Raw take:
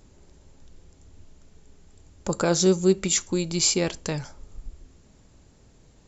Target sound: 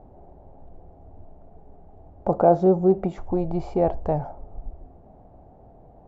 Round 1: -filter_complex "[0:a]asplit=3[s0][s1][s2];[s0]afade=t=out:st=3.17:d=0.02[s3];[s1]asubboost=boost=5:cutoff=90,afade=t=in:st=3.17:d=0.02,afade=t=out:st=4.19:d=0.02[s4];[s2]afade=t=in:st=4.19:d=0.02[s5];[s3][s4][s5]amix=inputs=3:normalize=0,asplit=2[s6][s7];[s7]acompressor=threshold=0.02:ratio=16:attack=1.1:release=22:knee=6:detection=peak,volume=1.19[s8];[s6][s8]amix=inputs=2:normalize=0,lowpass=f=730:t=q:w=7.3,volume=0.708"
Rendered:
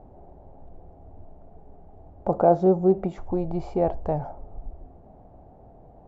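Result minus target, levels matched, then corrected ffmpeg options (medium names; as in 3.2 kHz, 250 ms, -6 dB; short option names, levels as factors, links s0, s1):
compression: peak gain reduction +7 dB
-filter_complex "[0:a]asplit=3[s0][s1][s2];[s0]afade=t=out:st=3.17:d=0.02[s3];[s1]asubboost=boost=5:cutoff=90,afade=t=in:st=3.17:d=0.02,afade=t=out:st=4.19:d=0.02[s4];[s2]afade=t=in:st=4.19:d=0.02[s5];[s3][s4][s5]amix=inputs=3:normalize=0,asplit=2[s6][s7];[s7]acompressor=threshold=0.0473:ratio=16:attack=1.1:release=22:knee=6:detection=peak,volume=1.19[s8];[s6][s8]amix=inputs=2:normalize=0,lowpass=f=730:t=q:w=7.3,volume=0.708"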